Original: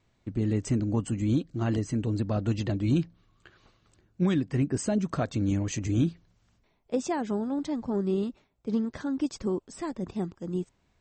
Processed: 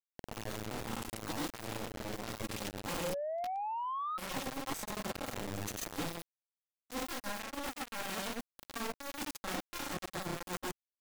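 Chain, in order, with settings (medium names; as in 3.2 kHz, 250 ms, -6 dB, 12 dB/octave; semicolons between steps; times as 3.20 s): comb filter that takes the minimum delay 3.7 ms; treble shelf 5.4 kHz +9 dB; reverse; compression 10:1, threshold -39 dBFS, peak gain reduction 17.5 dB; reverse; word length cut 6-bit, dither none; granulator 136 ms, grains 29 per s, spray 101 ms; in parallel at -5.5 dB: sine folder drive 13 dB, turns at -31.5 dBFS; on the sum: painted sound rise, 3.03–4.18 s, 510–1300 Hz -44 dBFS; saturation -37.5 dBFS, distortion -14 dB; trim +8 dB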